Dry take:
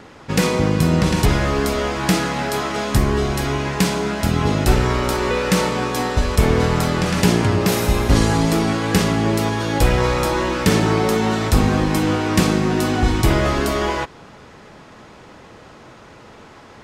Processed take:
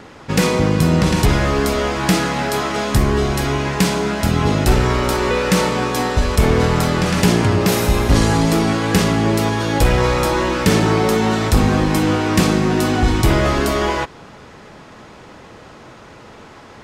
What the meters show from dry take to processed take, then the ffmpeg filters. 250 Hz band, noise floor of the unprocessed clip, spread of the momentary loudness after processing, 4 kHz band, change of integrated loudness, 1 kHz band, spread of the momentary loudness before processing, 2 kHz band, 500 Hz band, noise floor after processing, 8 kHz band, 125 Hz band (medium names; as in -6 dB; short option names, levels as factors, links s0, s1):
+2.0 dB, -43 dBFS, 4 LU, +2.0 dB, +2.0 dB, +2.0 dB, 4 LU, +2.0 dB, +2.0 dB, -41 dBFS, +2.0 dB, +2.0 dB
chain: -af "asoftclip=type=tanh:threshold=0.531,volume=1.33"